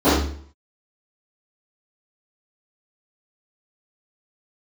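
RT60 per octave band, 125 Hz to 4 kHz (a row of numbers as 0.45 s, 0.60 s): 0.60 s, 0.55 s, 0.55 s, 0.50 s, 0.50 s, 0.45 s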